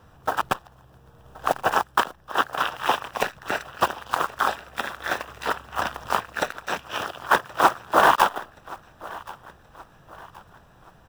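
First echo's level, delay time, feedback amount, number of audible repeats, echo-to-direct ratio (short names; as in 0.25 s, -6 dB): -20.5 dB, 1.075 s, 42%, 2, -19.5 dB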